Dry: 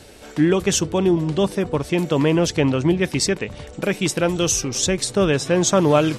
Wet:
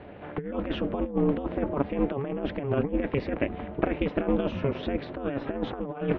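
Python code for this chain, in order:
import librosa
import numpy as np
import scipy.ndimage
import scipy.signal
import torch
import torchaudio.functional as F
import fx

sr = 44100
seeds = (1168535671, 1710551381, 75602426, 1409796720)

y = scipy.signal.sosfilt(scipy.signal.bessel(8, 1600.0, 'lowpass', norm='mag', fs=sr, output='sos'), x)
y = fx.peak_eq(y, sr, hz=120.0, db=-7.5, octaves=0.33)
y = y * np.sin(2.0 * np.pi * 140.0 * np.arange(len(y)) / sr)
y = fx.highpass(y, sr, hz=60.0, slope=6)
y = fx.over_compress(y, sr, threshold_db=-26.0, ratio=-0.5)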